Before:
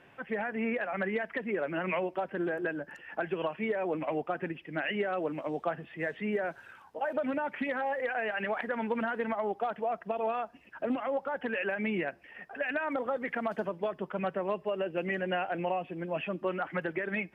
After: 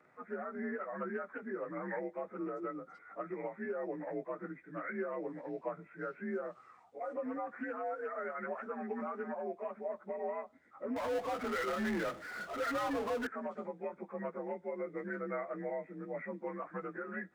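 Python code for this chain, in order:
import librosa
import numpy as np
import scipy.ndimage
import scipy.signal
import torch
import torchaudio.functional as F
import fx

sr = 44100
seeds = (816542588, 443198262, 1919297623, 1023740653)

y = fx.partial_stretch(x, sr, pct=88)
y = fx.low_shelf(y, sr, hz=69.0, db=-11.5)
y = fx.power_curve(y, sr, exponent=0.5, at=(10.96, 13.27))
y = y * 10.0 ** (-5.5 / 20.0)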